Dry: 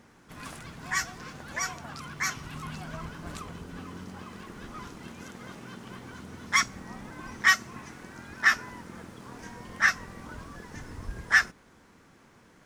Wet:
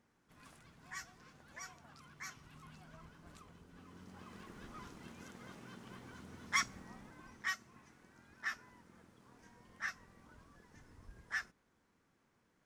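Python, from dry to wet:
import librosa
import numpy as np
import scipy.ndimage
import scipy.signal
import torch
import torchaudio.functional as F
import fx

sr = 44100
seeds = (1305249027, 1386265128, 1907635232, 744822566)

y = fx.gain(x, sr, db=fx.line((3.71, -18.0), (4.35, -9.5), (6.73, -9.5), (7.57, -18.5)))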